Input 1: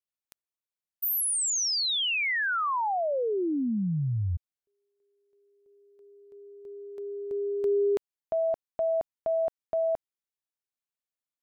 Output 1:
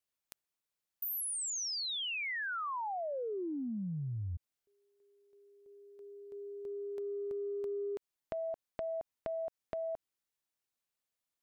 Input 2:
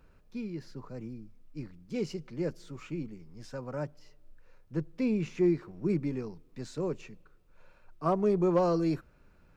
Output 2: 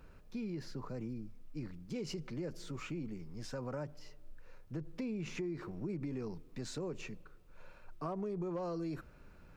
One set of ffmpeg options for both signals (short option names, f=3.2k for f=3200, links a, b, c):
-af "acompressor=threshold=-41dB:ratio=8:attack=9.5:release=51:knee=6:detection=rms,volume=3.5dB"